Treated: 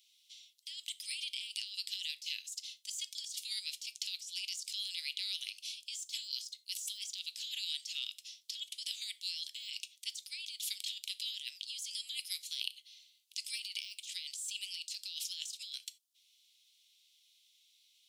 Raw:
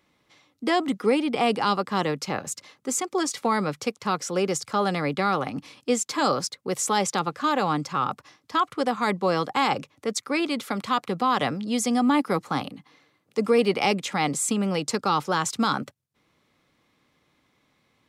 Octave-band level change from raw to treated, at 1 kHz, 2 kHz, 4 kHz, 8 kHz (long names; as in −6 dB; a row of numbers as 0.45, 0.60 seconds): below −40 dB, −17.5 dB, −3.0 dB, −11.0 dB